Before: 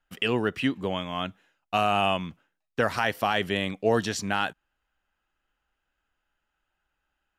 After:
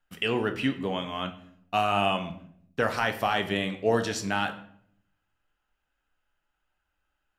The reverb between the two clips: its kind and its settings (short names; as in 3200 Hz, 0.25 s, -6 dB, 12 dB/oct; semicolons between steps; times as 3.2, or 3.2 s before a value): shoebox room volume 110 m³, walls mixed, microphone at 0.4 m; gain -2 dB